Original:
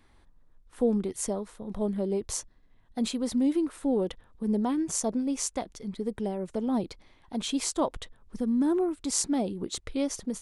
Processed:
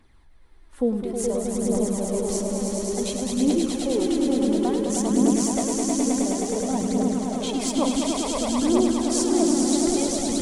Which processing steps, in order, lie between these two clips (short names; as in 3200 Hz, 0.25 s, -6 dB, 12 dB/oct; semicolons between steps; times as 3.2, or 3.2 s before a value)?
swelling echo 0.105 s, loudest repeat 5, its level -4 dB; phaser 0.57 Hz, delay 4 ms, feedback 42%